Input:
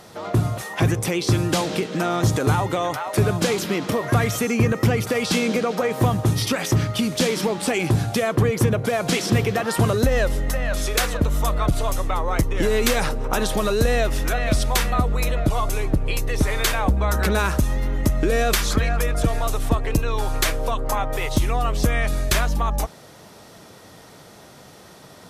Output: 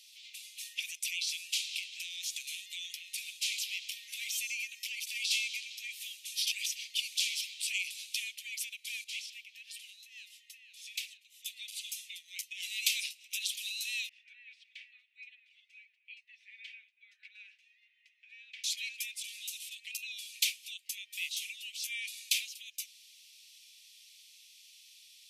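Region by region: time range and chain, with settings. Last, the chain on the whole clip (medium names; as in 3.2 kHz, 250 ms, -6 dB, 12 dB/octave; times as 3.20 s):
9.04–11.46 s: treble shelf 2.3 kHz -11.5 dB + tremolo triangle 1.7 Hz, depth 60%
14.09–18.64 s: Butterworth band-pass 1.3 kHz, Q 1.6 + comb 4 ms, depth 42%
whole clip: steep high-pass 2.4 kHz 72 dB/octave; treble shelf 3.7 kHz -8 dB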